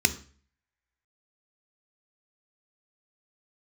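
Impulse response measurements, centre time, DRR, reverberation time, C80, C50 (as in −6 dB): 5 ms, 10.0 dB, 0.45 s, 20.5 dB, 16.0 dB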